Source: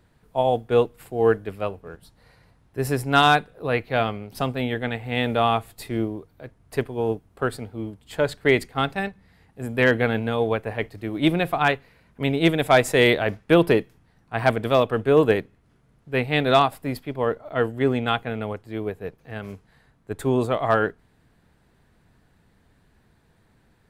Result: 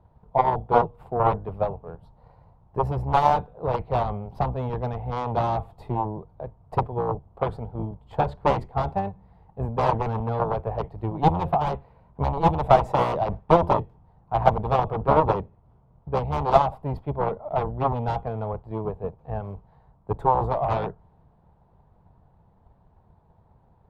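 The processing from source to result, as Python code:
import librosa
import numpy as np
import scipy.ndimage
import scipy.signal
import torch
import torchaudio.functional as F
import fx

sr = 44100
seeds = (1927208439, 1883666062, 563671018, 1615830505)

y = fx.octave_divider(x, sr, octaves=1, level_db=-5.0)
y = fx.cheby_harmonics(y, sr, harmonics=(3, 4, 7), levels_db=(-21, -20, -9), full_scale_db=-5.0)
y = fx.curve_eq(y, sr, hz=(170.0, 270.0, 920.0, 1700.0, 3400.0, 8800.0), db=(0, -9, 12, -7, -4, -16))
y = fx.transient(y, sr, attack_db=7, sustain_db=2)
y = fx.tilt_shelf(y, sr, db=8.0, hz=1100.0)
y = F.gain(torch.from_numpy(y), -11.0).numpy()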